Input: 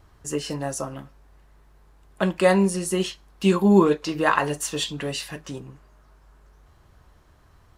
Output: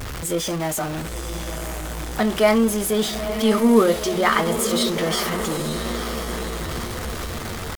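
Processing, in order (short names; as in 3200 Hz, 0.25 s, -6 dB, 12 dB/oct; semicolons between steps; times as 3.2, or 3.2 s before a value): zero-crossing step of -25 dBFS; diffused feedback echo 0.959 s, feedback 58%, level -8 dB; pitch shift +2.5 st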